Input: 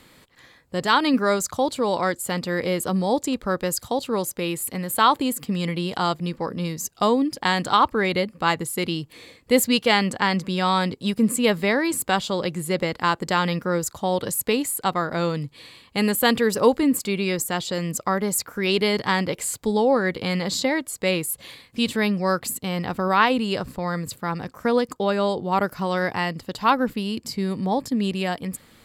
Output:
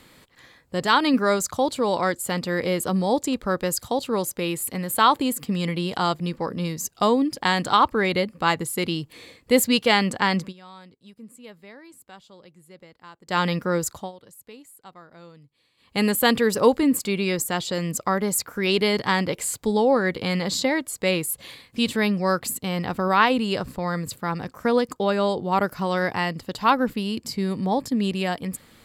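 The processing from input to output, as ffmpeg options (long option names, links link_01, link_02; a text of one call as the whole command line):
ffmpeg -i in.wav -filter_complex "[0:a]asplit=5[link_01][link_02][link_03][link_04][link_05];[link_01]atrim=end=10.53,asetpts=PTS-STARTPTS,afade=type=out:start_time=10.39:duration=0.14:curve=qsin:silence=0.0630957[link_06];[link_02]atrim=start=10.53:end=13.27,asetpts=PTS-STARTPTS,volume=-24dB[link_07];[link_03]atrim=start=13.27:end=14.12,asetpts=PTS-STARTPTS,afade=type=in:duration=0.14:curve=qsin:silence=0.0630957,afade=type=out:start_time=0.65:duration=0.2:silence=0.0749894[link_08];[link_04]atrim=start=14.12:end=15.77,asetpts=PTS-STARTPTS,volume=-22.5dB[link_09];[link_05]atrim=start=15.77,asetpts=PTS-STARTPTS,afade=type=in:duration=0.2:silence=0.0749894[link_10];[link_06][link_07][link_08][link_09][link_10]concat=n=5:v=0:a=1" out.wav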